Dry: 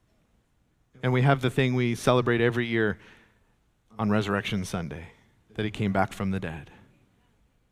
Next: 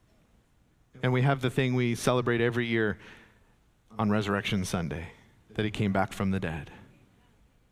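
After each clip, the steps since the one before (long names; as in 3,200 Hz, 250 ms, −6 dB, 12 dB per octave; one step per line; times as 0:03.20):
downward compressor 2 to 1, threshold −29 dBFS, peak gain reduction 8 dB
level +3 dB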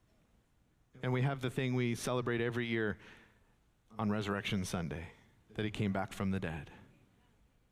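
brickwall limiter −17 dBFS, peak gain reduction 7 dB
level −6.5 dB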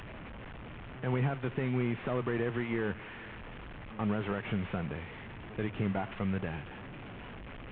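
linear delta modulator 16 kbit/s, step −41.5 dBFS
level +2.5 dB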